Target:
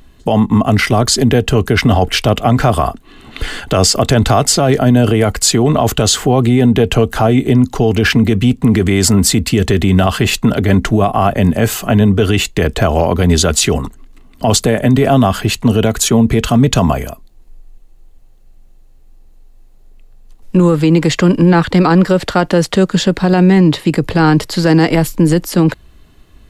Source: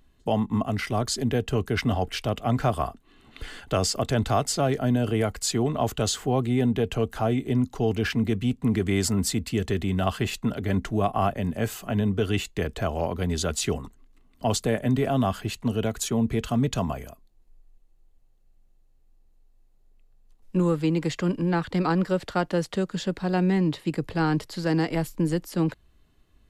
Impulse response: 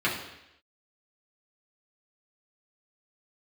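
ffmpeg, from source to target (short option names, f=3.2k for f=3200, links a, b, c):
-af "alimiter=level_in=18dB:limit=-1dB:release=50:level=0:latency=1,volume=-1dB"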